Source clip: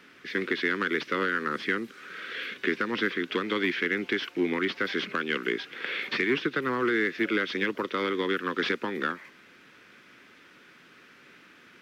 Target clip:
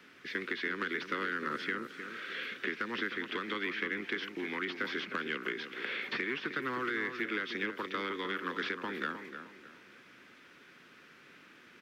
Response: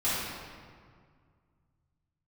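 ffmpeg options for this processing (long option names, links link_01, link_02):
-filter_complex "[0:a]acrossover=split=390|810|2100[link_01][link_02][link_03][link_04];[link_01]acompressor=threshold=-38dB:ratio=4[link_05];[link_02]acompressor=threshold=-45dB:ratio=4[link_06];[link_03]acompressor=threshold=-31dB:ratio=4[link_07];[link_04]acompressor=threshold=-38dB:ratio=4[link_08];[link_05][link_06][link_07][link_08]amix=inputs=4:normalize=0,asplit=2[link_09][link_10];[link_10]adelay=309,lowpass=frequency=2000:poles=1,volume=-8dB,asplit=2[link_11][link_12];[link_12]adelay=309,lowpass=frequency=2000:poles=1,volume=0.36,asplit=2[link_13][link_14];[link_14]adelay=309,lowpass=frequency=2000:poles=1,volume=0.36,asplit=2[link_15][link_16];[link_16]adelay=309,lowpass=frequency=2000:poles=1,volume=0.36[link_17];[link_09][link_11][link_13][link_15][link_17]amix=inputs=5:normalize=0,volume=-3.5dB"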